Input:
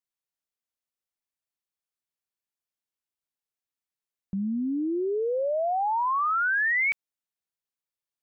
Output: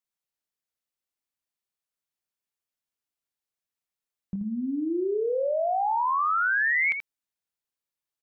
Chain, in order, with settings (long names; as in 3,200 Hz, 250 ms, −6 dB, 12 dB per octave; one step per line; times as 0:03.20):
0:04.35–0:04.89: dynamic equaliser 180 Hz, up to −4 dB, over −44 dBFS, Q 1.5
single-tap delay 81 ms −8.5 dB